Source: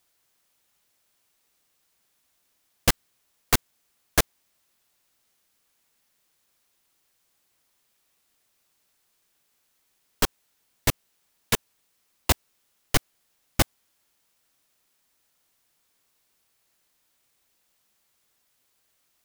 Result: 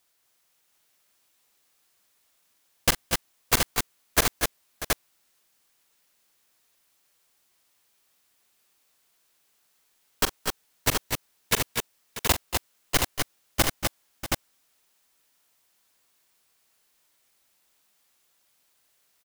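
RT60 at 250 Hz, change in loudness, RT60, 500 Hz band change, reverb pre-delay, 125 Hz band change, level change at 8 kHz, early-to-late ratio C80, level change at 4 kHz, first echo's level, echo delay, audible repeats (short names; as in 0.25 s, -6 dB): none, -0.5 dB, none, +1.5 dB, none, -2.0 dB, +2.5 dB, none, +2.5 dB, -11.5 dB, 43 ms, 4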